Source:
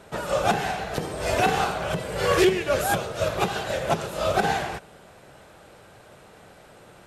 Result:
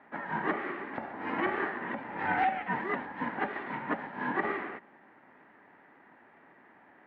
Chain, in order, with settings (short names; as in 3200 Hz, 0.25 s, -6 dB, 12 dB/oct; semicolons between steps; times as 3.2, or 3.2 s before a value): ring modulator 390 Hz; speaker cabinet 280–2000 Hz, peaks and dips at 510 Hz -9 dB, 1100 Hz -9 dB, 1800 Hz +5 dB; gain -1.5 dB